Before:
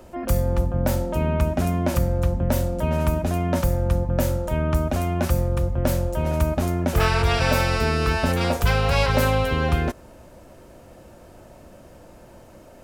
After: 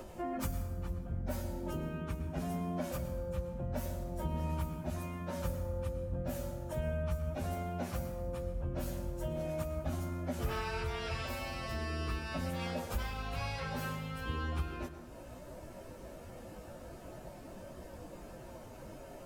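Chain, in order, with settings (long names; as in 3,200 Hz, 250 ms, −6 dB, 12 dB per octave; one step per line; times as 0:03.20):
downward compressor 5 to 1, threshold −33 dBFS, peak gain reduction 17 dB
time stretch by phase vocoder 1.5×
convolution reverb RT60 1.2 s, pre-delay 93 ms, DRR 9.5 dB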